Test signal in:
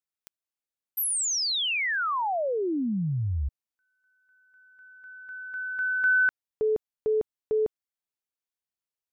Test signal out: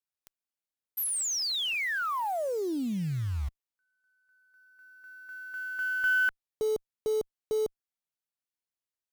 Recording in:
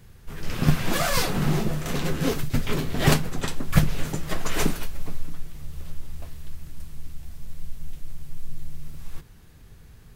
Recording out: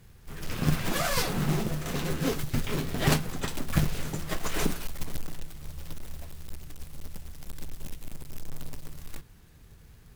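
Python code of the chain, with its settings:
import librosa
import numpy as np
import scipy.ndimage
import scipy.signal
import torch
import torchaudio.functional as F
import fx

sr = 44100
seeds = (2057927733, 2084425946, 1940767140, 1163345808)

y = fx.quant_float(x, sr, bits=2)
y = fx.tube_stage(y, sr, drive_db=9.0, bias=0.35)
y = y * 10.0 ** (-2.5 / 20.0)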